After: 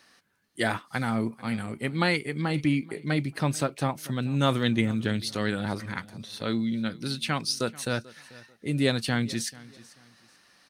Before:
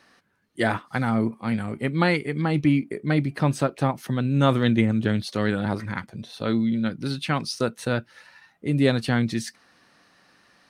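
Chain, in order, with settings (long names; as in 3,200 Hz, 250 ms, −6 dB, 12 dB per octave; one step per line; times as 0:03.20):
high-shelf EQ 2,800 Hz +10 dB
on a send: repeating echo 439 ms, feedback 28%, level −21 dB
on the sum: level −5 dB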